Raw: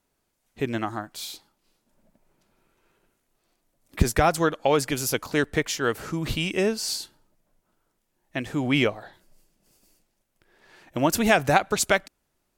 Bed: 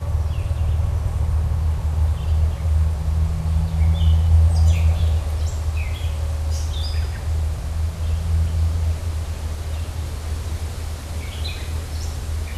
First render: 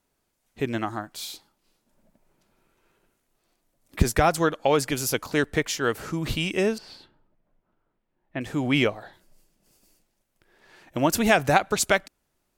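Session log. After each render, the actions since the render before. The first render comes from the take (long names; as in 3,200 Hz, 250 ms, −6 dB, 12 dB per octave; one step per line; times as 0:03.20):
0:06.78–0:08.41: high-frequency loss of the air 420 metres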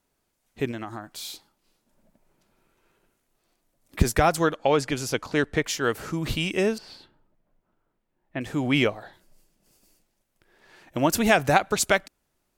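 0:00.71–0:01.25: downward compressor 2.5 to 1, threshold −33 dBFS
0:04.55–0:05.64: high-frequency loss of the air 53 metres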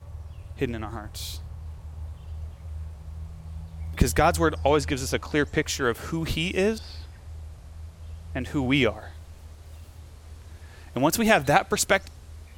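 mix in bed −18 dB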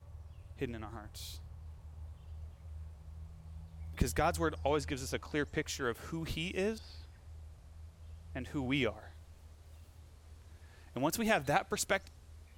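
level −11 dB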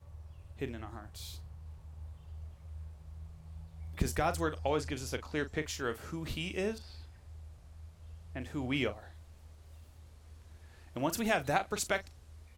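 double-tracking delay 39 ms −12 dB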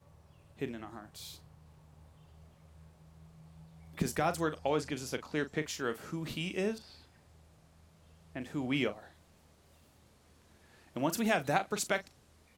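low shelf with overshoot 110 Hz −12.5 dB, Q 1.5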